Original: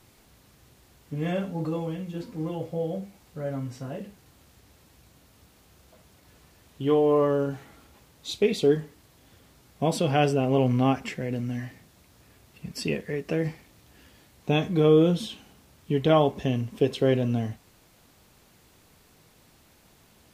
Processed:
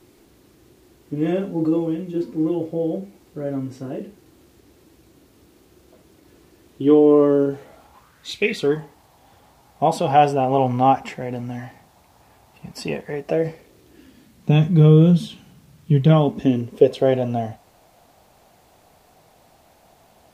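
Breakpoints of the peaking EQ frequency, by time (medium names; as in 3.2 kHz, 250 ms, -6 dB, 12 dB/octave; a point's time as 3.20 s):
peaking EQ +14.5 dB 0.82 oct
7.43 s 340 Hz
8.43 s 2.5 kHz
8.81 s 820 Hz
13.13 s 820 Hz
14.65 s 150 Hz
16.05 s 150 Hz
17.05 s 710 Hz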